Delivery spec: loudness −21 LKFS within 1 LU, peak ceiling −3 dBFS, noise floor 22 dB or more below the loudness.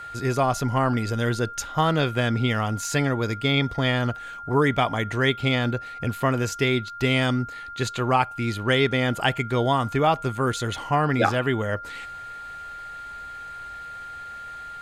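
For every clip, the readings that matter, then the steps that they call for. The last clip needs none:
interfering tone 1,400 Hz; level of the tone −35 dBFS; integrated loudness −24.0 LKFS; sample peak −6.5 dBFS; target loudness −21.0 LKFS
→ notch filter 1,400 Hz, Q 30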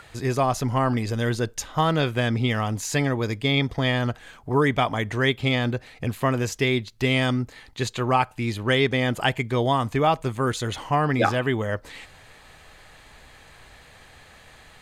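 interfering tone none found; integrated loudness −24.0 LKFS; sample peak −7.0 dBFS; target loudness −21.0 LKFS
→ level +3 dB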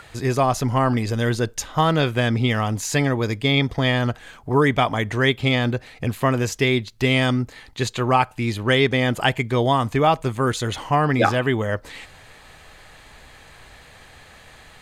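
integrated loudness −21.0 LKFS; sample peak −4.0 dBFS; background noise floor −48 dBFS

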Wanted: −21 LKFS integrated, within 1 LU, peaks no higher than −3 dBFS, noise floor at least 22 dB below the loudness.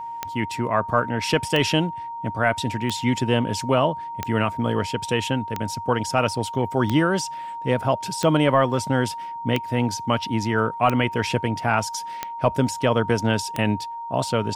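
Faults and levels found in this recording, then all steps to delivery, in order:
number of clicks 11; interfering tone 930 Hz; level of the tone −30 dBFS; integrated loudness −23.0 LKFS; sample peak −6.5 dBFS; target loudness −21.0 LKFS
→ click removal
notch filter 930 Hz, Q 30
level +2 dB

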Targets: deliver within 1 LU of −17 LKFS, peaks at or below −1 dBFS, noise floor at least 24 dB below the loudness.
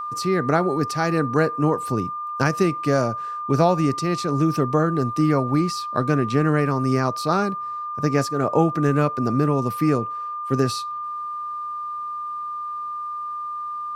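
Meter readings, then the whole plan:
interfering tone 1,200 Hz; level of the tone −27 dBFS; integrated loudness −22.5 LKFS; sample peak −4.0 dBFS; target loudness −17.0 LKFS
→ notch filter 1,200 Hz, Q 30
level +5.5 dB
brickwall limiter −1 dBFS

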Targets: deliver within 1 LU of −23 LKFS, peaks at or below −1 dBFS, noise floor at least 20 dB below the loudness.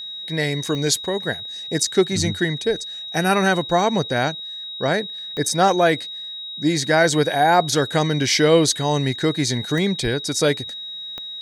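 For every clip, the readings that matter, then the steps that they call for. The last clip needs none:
number of clicks 4; interfering tone 3,800 Hz; level of the tone −30 dBFS; integrated loudness −20.5 LKFS; sample peak −4.0 dBFS; target loudness −23.0 LKFS
→ click removal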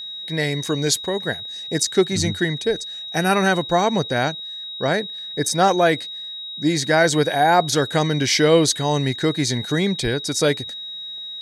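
number of clicks 0; interfering tone 3,800 Hz; level of the tone −30 dBFS
→ notch filter 3,800 Hz, Q 30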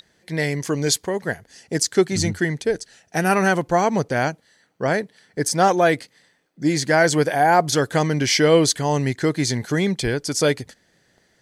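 interfering tone none found; integrated loudness −20.5 LKFS; sample peak −4.0 dBFS; target loudness −23.0 LKFS
→ level −2.5 dB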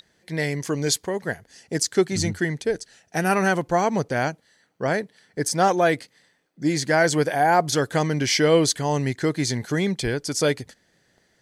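integrated loudness −23.0 LKFS; sample peak −6.5 dBFS; background noise floor −65 dBFS

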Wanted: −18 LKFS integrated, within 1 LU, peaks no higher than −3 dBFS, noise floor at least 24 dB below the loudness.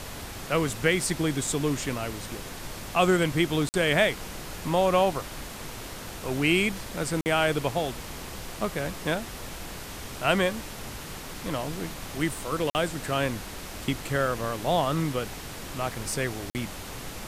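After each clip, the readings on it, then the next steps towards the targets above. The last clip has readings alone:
number of dropouts 4; longest dropout 49 ms; background noise floor −40 dBFS; target noise floor −53 dBFS; integrated loudness −28.5 LKFS; sample peak −7.5 dBFS; target loudness −18.0 LKFS
→ repair the gap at 0:03.69/0:07.21/0:12.70/0:16.50, 49 ms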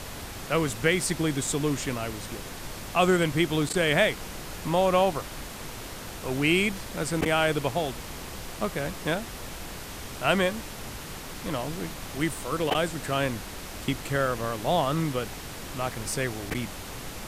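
number of dropouts 0; background noise floor −39 dBFS; target noise floor −52 dBFS
→ noise reduction from a noise print 13 dB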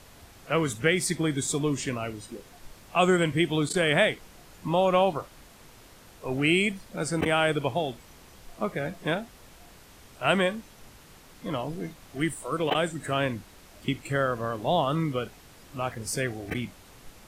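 background noise floor −52 dBFS; integrated loudness −27.5 LKFS; sample peak −7.5 dBFS; target loudness −18.0 LKFS
→ level +9.5 dB
brickwall limiter −3 dBFS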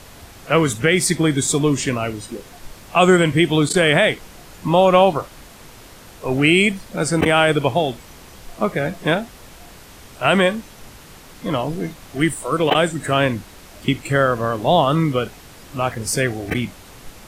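integrated loudness −18.5 LKFS; sample peak −3.0 dBFS; background noise floor −43 dBFS

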